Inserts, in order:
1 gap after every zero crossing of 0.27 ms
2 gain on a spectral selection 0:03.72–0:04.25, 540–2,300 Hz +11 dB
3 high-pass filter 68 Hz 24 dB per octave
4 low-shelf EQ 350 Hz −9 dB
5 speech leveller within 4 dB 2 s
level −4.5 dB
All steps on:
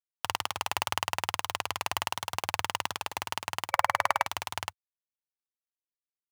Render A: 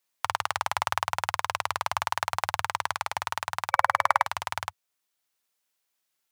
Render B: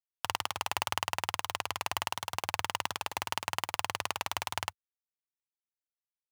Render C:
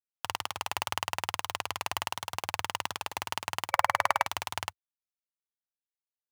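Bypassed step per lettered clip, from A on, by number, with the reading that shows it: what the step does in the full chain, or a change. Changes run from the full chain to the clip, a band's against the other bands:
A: 1, change in crest factor −2.5 dB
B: 2, 1 kHz band −2.5 dB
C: 5, change in momentary loudness spread +1 LU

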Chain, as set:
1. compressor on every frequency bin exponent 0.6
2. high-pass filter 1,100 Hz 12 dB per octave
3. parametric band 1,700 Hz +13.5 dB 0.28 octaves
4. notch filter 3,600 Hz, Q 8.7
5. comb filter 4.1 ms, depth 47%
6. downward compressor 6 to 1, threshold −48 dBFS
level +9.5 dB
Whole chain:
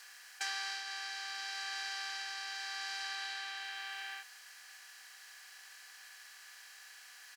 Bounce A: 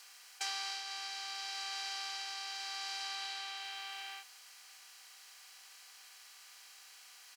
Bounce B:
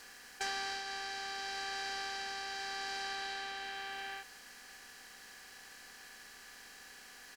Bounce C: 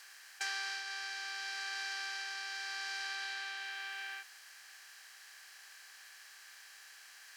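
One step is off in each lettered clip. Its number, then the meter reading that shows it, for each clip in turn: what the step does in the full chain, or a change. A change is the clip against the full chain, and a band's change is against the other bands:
3, 2 kHz band −6.0 dB
2, 500 Hz band +16.0 dB
5, 500 Hz band +3.5 dB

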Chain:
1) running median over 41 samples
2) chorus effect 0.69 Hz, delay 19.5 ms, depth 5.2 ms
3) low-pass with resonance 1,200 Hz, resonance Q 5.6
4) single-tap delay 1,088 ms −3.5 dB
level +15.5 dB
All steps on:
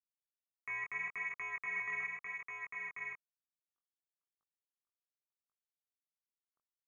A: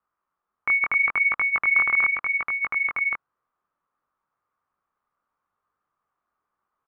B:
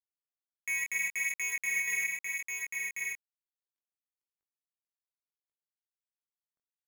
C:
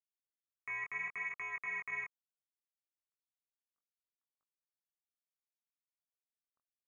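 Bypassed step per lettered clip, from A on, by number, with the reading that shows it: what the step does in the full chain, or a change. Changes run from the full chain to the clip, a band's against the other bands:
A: 1, change in integrated loudness +19.0 LU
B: 3, change in crest factor −2.0 dB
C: 4, change in momentary loudness spread −1 LU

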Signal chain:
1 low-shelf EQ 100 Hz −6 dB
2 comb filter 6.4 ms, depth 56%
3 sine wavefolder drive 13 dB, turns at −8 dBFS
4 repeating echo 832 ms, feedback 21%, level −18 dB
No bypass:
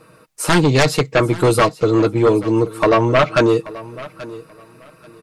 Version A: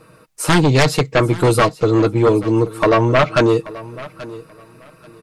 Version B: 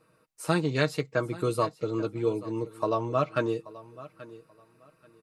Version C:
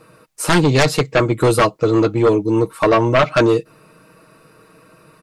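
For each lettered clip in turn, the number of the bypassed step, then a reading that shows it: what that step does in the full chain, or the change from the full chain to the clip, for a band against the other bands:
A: 1, 125 Hz band +2.0 dB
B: 3, distortion level −5 dB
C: 4, change in momentary loudness spread −14 LU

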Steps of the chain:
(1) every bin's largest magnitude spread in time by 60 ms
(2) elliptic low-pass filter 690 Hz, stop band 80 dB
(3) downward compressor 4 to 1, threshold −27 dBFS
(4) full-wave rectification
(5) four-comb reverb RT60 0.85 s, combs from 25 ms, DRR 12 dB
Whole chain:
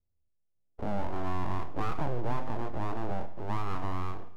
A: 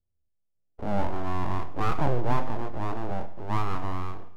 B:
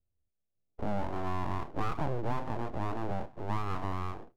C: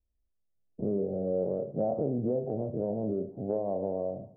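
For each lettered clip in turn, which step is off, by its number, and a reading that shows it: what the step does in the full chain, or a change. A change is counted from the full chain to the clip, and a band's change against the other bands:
3, average gain reduction 3.0 dB
5, change in crest factor +4.0 dB
4, change in crest factor +4.0 dB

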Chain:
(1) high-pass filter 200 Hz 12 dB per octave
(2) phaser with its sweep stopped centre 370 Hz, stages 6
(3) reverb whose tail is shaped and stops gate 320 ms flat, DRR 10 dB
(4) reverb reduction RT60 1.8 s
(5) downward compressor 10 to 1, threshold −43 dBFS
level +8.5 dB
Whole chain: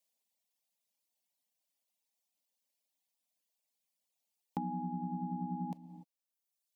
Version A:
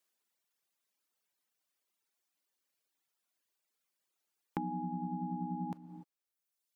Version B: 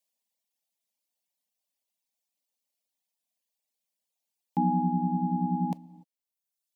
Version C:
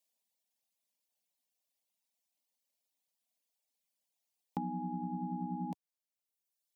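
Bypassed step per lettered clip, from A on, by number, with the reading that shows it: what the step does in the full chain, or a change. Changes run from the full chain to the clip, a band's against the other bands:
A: 2, 500 Hz band +3.5 dB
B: 5, average gain reduction 9.0 dB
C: 3, change in momentary loudness spread −6 LU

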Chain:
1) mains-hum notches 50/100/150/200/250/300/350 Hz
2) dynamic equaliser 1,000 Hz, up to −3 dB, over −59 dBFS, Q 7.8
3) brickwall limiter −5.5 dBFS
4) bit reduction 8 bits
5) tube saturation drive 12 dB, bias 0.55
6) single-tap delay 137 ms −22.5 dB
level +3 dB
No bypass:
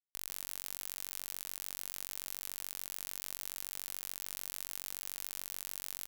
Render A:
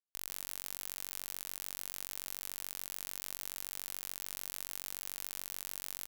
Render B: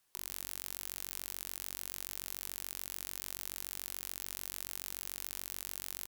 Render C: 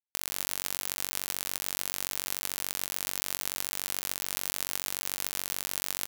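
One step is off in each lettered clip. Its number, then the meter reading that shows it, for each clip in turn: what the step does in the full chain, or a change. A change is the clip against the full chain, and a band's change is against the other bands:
2, 8 kHz band −1.5 dB
4, distortion level −25 dB
5, change in crest factor +1.5 dB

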